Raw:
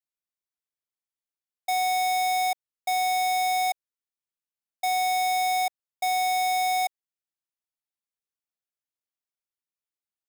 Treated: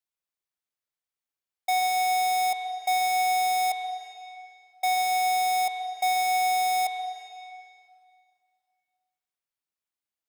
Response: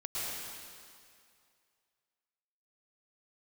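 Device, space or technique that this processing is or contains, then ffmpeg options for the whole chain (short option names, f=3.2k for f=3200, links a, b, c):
filtered reverb send: -filter_complex "[0:a]asplit=2[a][b];[b]highpass=430,lowpass=4.8k[c];[1:a]atrim=start_sample=2205[d];[c][d]afir=irnorm=-1:irlink=0,volume=-9dB[e];[a][e]amix=inputs=2:normalize=0"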